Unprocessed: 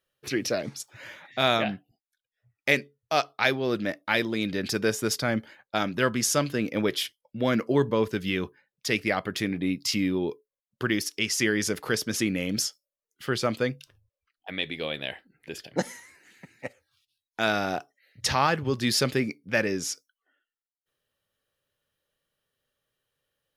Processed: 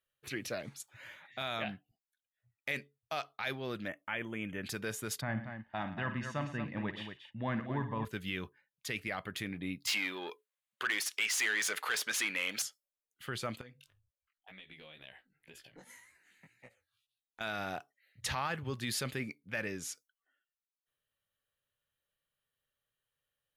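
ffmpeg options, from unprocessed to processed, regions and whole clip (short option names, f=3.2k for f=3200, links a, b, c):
-filter_complex "[0:a]asettb=1/sr,asplit=3[a][b][c];[a]atrim=end=3.884[d];[b]atrim=start=3.88:end=4.63,asetpts=PTS-STARTPTS,afade=t=in:d=0.004:c=qsin,afade=t=out:st=0.746:d=0.004:c=qsin,asuperstop=centerf=4500:order=20:qfactor=1.8,acrossover=split=4000[e][f];[f]acompressor=threshold=-55dB:ratio=4:attack=1:release=60[g];[e][g]amix=inputs=2:normalize=0[h];[c]atrim=start=4.626[i];[d][h]acrossfade=d=0.004:c1=hsin:c2=qsin[j];[j][i]acrossfade=d=0.004:c1=qsin:c2=hsin,asettb=1/sr,asplit=3[k][l][m];[k]atrim=end=5.214[n];[l]atrim=start=5.21:end=8.05,asetpts=PTS-STARTPTS,afade=t=in:d=0.004:c=qsin,afade=t=out:st=2.836:d=0.004:c=qsin,lowpass=2k,aecho=1:1:1.1:0.56,atrim=end_sample=125244,aecho=1:1:53|112|230:0.251|0.168|0.355,atrim=end_sample=125244[o];[m]atrim=start=8.046[p];[n][o]acrossfade=d=0.004:c1=hsin:c2=qsin[q];[q][p]acrossfade=d=0.004:c1=qsin:c2=hsin,asettb=1/sr,asplit=3[r][s][t];[r]atrim=end=9.874[u];[s]atrim=start=9.87:end=12.62,asetpts=PTS-STARTPTS,afade=t=in:d=0.004:c=qsin,afade=t=out:st=2.746:d=0.004:c=qsin,asplit=2[v][w];[w]highpass=f=720:p=1,volume=20dB,asoftclip=type=tanh:threshold=-9dB[x];[v][x]amix=inputs=2:normalize=0,lowpass=f=4.1k:p=1,volume=-6dB,highpass=f=1k:p=1[y];[t]atrim=start=12.616[z];[u][y]acrossfade=d=0.004:c1=hsin:c2=qsin[aa];[aa][z]acrossfade=d=0.004:c1=qsin:c2=hsin,asettb=1/sr,asplit=3[ab][ac][ad];[ab]atrim=end=13.614[ae];[ac]atrim=start=13.61:end=17.41,asetpts=PTS-STARTPTS,afade=t=in:d=0.004:c=qsin,afade=t=out:st=3.796:d=0.004:c=qsin,acompressor=threshold=-36dB:ratio=8:attack=3.2:release=140:knee=1:detection=peak,flanger=delay=15.5:depth=5:speed=2[af];[ad]atrim=start=17.406[ag];[ae][af]acrossfade=d=0.004:c1=hsin:c2=qsin[ah];[ah][ag]acrossfade=d=0.004:c1=qsin:c2=hsin,equalizer=f=5.3k:w=2.8:g=-9.5,alimiter=limit=-16dB:level=0:latency=1:release=17,equalizer=f=350:w=0.61:g=-7.5,volume=-6dB"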